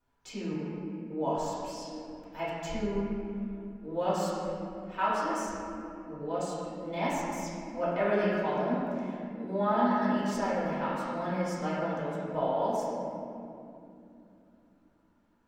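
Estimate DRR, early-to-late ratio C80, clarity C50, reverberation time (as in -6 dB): -10.0 dB, -1.0 dB, -3.0 dB, 2.8 s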